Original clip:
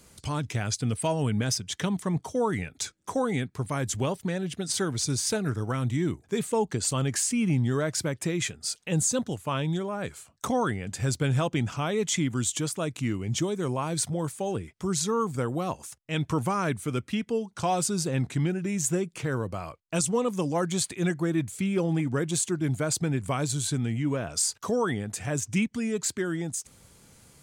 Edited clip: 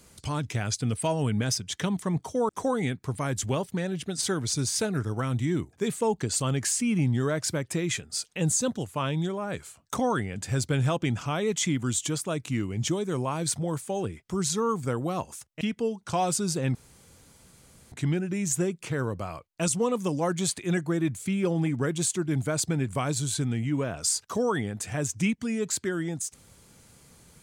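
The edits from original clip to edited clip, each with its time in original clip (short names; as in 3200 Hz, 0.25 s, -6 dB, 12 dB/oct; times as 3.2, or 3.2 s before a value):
2.49–3 cut
16.12–17.11 cut
18.25 insert room tone 1.17 s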